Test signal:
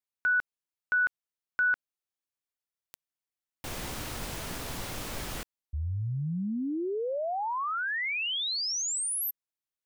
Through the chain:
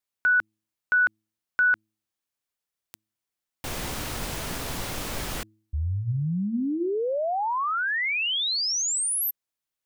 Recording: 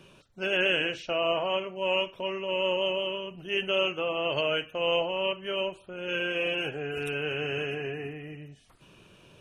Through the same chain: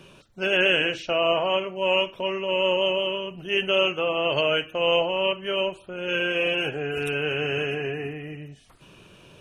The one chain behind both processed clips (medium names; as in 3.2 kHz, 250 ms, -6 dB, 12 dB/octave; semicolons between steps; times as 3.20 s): de-hum 107.7 Hz, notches 3; trim +5 dB